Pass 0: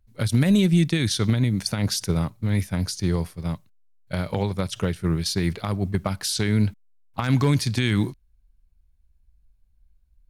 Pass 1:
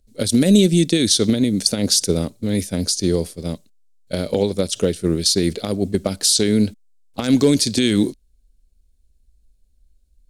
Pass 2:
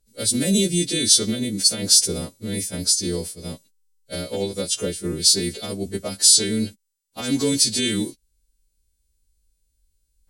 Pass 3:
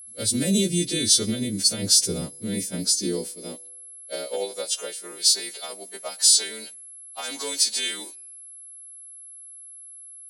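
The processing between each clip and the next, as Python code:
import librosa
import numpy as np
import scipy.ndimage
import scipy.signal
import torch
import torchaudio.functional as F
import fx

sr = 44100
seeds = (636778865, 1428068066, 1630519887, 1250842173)

y1 = fx.graphic_eq_10(x, sr, hz=(125, 250, 500, 1000, 2000, 4000, 8000), db=(-11, 7, 9, -10, -4, 5, 10))
y1 = y1 * librosa.db_to_amplitude(3.0)
y2 = fx.freq_snap(y1, sr, grid_st=2)
y2 = y2 * librosa.db_to_amplitude(-6.5)
y3 = y2 + 10.0 ** (-38.0 / 20.0) * np.sin(2.0 * np.pi * 11000.0 * np.arange(len(y2)) / sr)
y3 = fx.filter_sweep_highpass(y3, sr, from_hz=62.0, to_hz=800.0, start_s=1.27, end_s=4.88, q=1.5)
y3 = fx.comb_fb(y3, sr, f0_hz=71.0, decay_s=1.2, harmonics='all', damping=0.0, mix_pct=30)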